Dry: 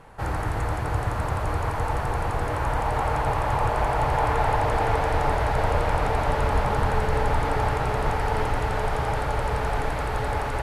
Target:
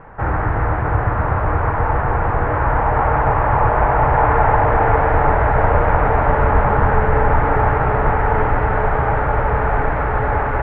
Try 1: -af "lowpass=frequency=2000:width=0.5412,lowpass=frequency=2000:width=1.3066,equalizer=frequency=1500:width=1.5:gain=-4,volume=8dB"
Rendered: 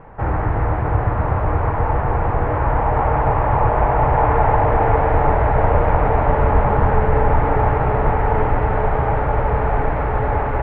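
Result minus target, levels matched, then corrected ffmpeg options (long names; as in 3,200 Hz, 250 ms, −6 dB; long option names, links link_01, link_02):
2,000 Hz band −4.5 dB
-af "lowpass=frequency=2000:width=0.5412,lowpass=frequency=2000:width=1.3066,equalizer=frequency=1500:width=1.5:gain=2.5,volume=8dB"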